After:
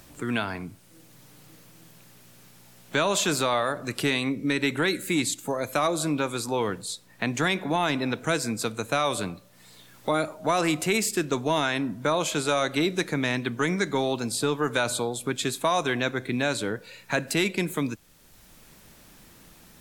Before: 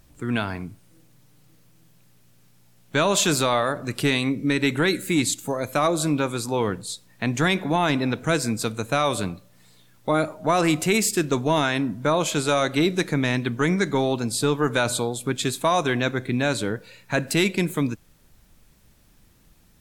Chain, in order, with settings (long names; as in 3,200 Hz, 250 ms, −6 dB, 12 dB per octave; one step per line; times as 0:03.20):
low-shelf EQ 220 Hz −6.5 dB
multiband upward and downward compressor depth 40%
level −2 dB